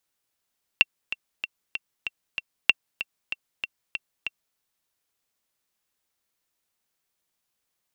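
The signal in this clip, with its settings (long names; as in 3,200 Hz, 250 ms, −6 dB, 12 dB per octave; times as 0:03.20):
click track 191 BPM, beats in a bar 6, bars 2, 2,720 Hz, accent 13.5 dB −2 dBFS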